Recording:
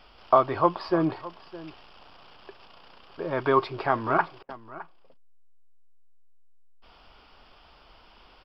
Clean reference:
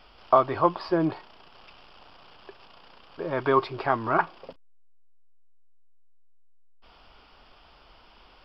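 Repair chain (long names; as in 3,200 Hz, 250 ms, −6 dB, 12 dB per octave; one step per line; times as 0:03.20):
repair the gap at 0:04.43, 58 ms
echo removal 612 ms −17.5 dB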